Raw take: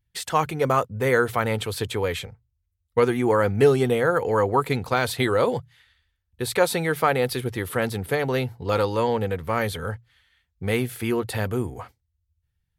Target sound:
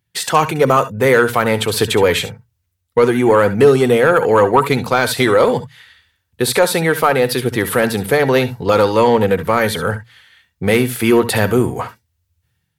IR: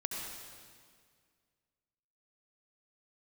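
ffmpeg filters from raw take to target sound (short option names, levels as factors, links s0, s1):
-filter_complex "[0:a]highpass=140,asplit=2[s0][s1];[s1]alimiter=limit=0.168:level=0:latency=1:release=492,volume=0.891[s2];[s0][s2]amix=inputs=2:normalize=0,dynaudnorm=f=100:g=5:m=2.11,asoftclip=type=tanh:threshold=0.596[s3];[1:a]atrim=start_sample=2205,atrim=end_sample=3087,asetrate=43218,aresample=44100[s4];[s3][s4]afir=irnorm=-1:irlink=0,volume=1.78"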